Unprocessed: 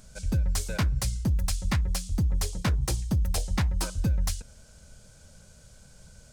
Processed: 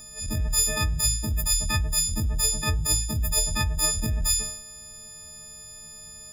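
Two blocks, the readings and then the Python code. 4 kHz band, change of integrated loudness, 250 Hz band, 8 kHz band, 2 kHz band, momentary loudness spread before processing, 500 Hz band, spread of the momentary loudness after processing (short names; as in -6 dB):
+10.5 dB, +5.0 dB, -2.0 dB, +13.5 dB, +5.5 dB, 2 LU, +2.5 dB, 18 LU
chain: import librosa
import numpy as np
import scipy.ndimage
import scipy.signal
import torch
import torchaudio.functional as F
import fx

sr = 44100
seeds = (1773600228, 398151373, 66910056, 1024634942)

y = fx.freq_snap(x, sr, grid_st=6)
y = fx.transient(y, sr, attack_db=-11, sustain_db=1)
y = fx.sustainer(y, sr, db_per_s=73.0)
y = F.gain(torch.from_numpy(y), 1.5).numpy()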